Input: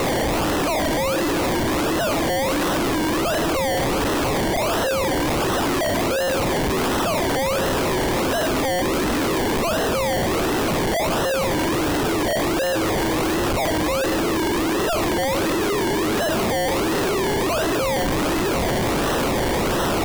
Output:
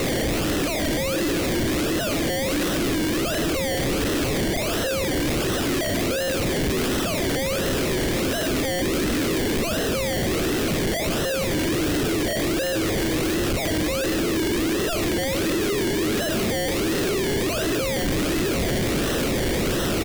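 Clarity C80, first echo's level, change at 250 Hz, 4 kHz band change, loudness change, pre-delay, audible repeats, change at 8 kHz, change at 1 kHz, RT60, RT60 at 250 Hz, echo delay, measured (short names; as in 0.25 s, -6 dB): none, -17.0 dB, -1.0 dB, -0.5 dB, -2.0 dB, none, 1, 0.0 dB, -9.0 dB, none, none, 0.153 s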